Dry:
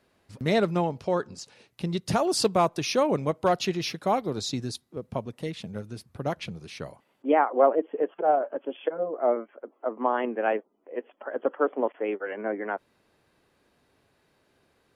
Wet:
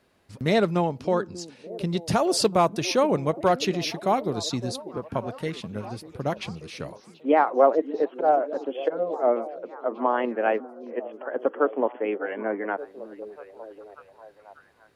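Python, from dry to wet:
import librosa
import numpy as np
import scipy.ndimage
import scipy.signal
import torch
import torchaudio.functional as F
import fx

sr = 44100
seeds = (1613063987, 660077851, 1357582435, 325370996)

y = fx.peak_eq(x, sr, hz=1500.0, db=12.0, octaves=0.59, at=(4.83, 5.55))
y = fx.echo_stepped(y, sr, ms=589, hz=280.0, octaves=0.7, feedback_pct=70, wet_db=-11)
y = y * librosa.db_to_amplitude(2.0)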